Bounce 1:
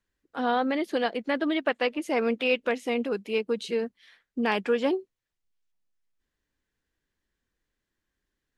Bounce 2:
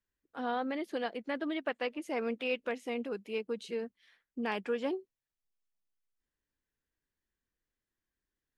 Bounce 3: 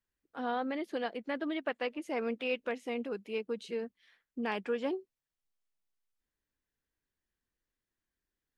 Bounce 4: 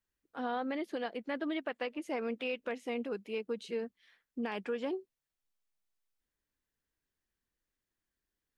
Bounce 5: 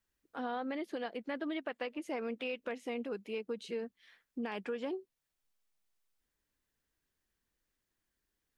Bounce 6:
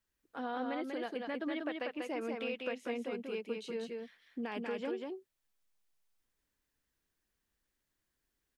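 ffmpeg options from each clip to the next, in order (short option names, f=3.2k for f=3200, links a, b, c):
-af "equalizer=f=4k:t=o:w=0.77:g=-2,volume=-8.5dB"
-af "highshelf=f=6.6k:g=-4"
-af "alimiter=level_in=2.5dB:limit=-24dB:level=0:latency=1:release=108,volume=-2.5dB"
-af "acompressor=threshold=-48dB:ratio=1.5,volume=3.5dB"
-af "aecho=1:1:191:0.668,volume=-1dB"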